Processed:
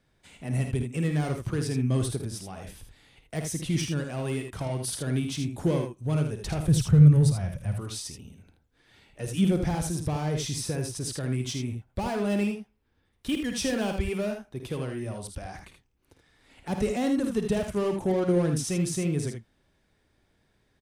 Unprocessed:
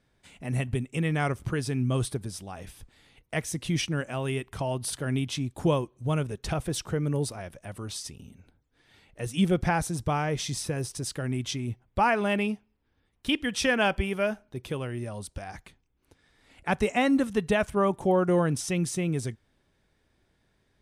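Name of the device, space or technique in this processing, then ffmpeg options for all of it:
one-band saturation: -filter_complex "[0:a]acrossover=split=510|4600[link_01][link_02][link_03];[link_02]asoftclip=type=tanh:threshold=-37dB[link_04];[link_01][link_04][link_03]amix=inputs=3:normalize=0,asettb=1/sr,asplit=3[link_05][link_06][link_07];[link_05]atrim=end=6.684[link_08];[link_06]atrim=start=6.68:end=7.77,asetpts=PTS-STARTPTS,afade=type=in:duration=0.004:curve=qsin,afade=type=out:start_time=1.086:duration=0.004:curve=qsin,lowshelf=frequency=210:width_type=q:width=1.5:gain=11.5[link_09];[link_07]atrim=start=7.766[link_10];[link_08][link_09]acrossfade=duration=0.004:curve1=hsin:curve2=qsin[link_11];[link_11][link_10]acrossfade=duration=0.004:curve1=qsin:curve2=hsin,aecho=1:1:53|79:0.335|0.447"

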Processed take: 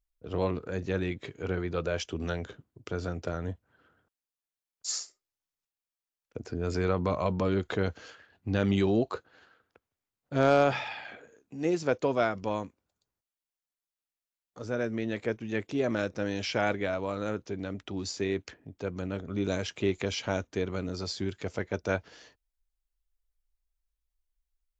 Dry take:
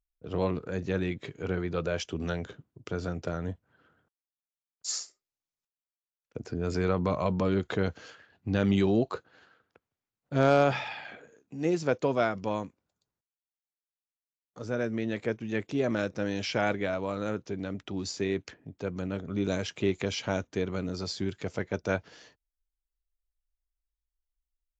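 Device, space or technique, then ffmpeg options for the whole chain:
low shelf boost with a cut just above: -af "lowshelf=frequency=68:gain=6,equalizer=frequency=150:width_type=o:width=1:gain=-4.5"

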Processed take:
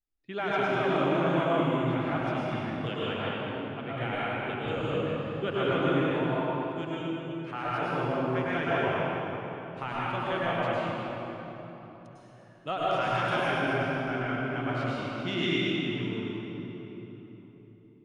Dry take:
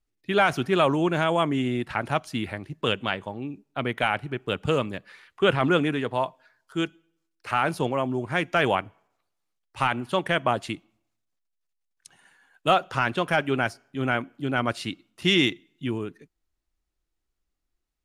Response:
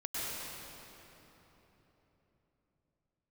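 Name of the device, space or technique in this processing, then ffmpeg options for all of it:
swimming-pool hall: -filter_complex "[0:a]lowpass=6300,asettb=1/sr,asplit=3[link_01][link_02][link_03];[link_01]atrim=end=12.834[link_04];[link_02]atrim=start=12.83:end=13.48,asetpts=PTS-STARTPTS,afade=type=in:duration=0.004:curve=qsin,afade=type=out:start_time=0.646:duration=0.004:curve=qsin,aemphasis=mode=production:type=75kf[link_05];[link_03]atrim=start=13.476[link_06];[link_04][link_05]acrossfade=duration=0.004:curve1=hsin:curve2=qsin[link_07];[link_07][link_06]acrossfade=duration=0.004:curve1=qsin:curve2=hsin[link_08];[1:a]atrim=start_sample=2205[link_09];[link_08][link_09]afir=irnorm=-1:irlink=0,highshelf=frequency=4200:gain=-5.5,volume=-8.5dB"

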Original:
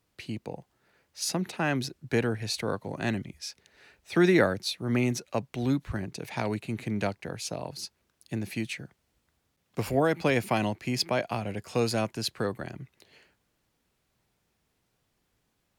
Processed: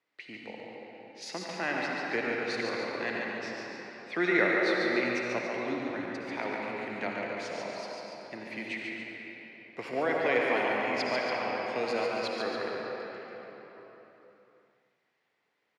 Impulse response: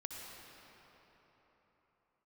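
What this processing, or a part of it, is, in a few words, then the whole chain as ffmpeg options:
station announcement: -filter_complex "[0:a]highpass=360,lowpass=4000,equalizer=frequency=2000:width_type=o:width=0.35:gain=9,aecho=1:1:142.9|282.8:0.562|0.316[link_01];[1:a]atrim=start_sample=2205[link_02];[link_01][link_02]afir=irnorm=-1:irlink=0"

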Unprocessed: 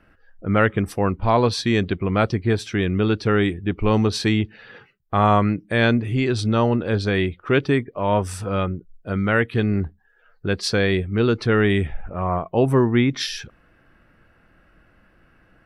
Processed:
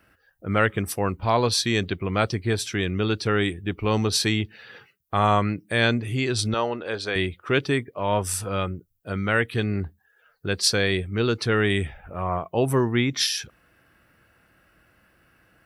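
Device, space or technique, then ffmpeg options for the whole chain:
low shelf boost with a cut just above: -filter_complex "[0:a]highpass=78,aemphasis=mode=production:type=75kf,asettb=1/sr,asplit=3[link_01][link_02][link_03];[link_01]atrim=end=6.544[link_04];[link_02]atrim=start=6.54:end=7.16,asetpts=PTS-STARTPTS,afade=type=in:duration=0.004:curve=qsin,afade=type=out:start_time=0.616:duration=0.004:curve=qsin,bass=frequency=250:gain=-15,treble=frequency=4000:gain=-6[link_05];[link_03]atrim=start=7.156[link_06];[link_04][link_05]acrossfade=duration=0.004:curve1=hsin:curve2=qsin[link_07];[link_07][link_06]acrossfade=duration=0.004:curve1=qsin:curve2=hsin,lowshelf=frequency=62:gain=5.5,equalizer=frequency=210:width_type=o:width=1.2:gain=-3,volume=-3.5dB"

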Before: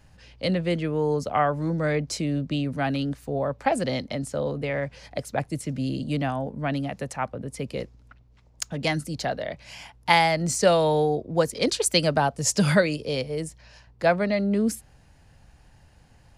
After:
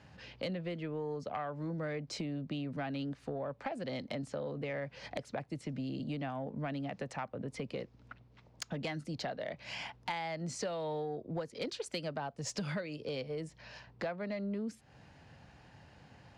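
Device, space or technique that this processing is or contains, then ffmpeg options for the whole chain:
AM radio: -af "highpass=120,lowpass=4400,acompressor=threshold=-37dB:ratio=8,asoftclip=type=tanh:threshold=-28.5dB,volume=2dB"

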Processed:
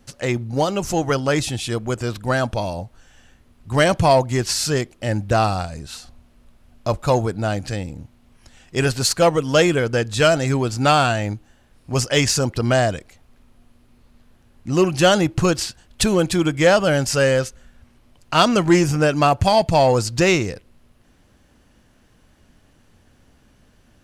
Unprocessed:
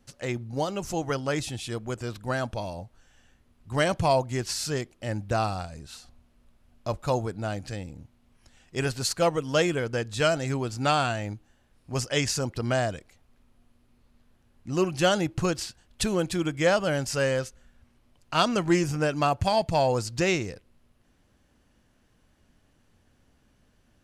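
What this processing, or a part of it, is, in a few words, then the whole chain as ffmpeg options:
parallel distortion: -filter_complex "[0:a]asplit=2[link_01][link_02];[link_02]asoftclip=type=hard:threshold=-22.5dB,volume=-7.5dB[link_03];[link_01][link_03]amix=inputs=2:normalize=0,volume=6dB"

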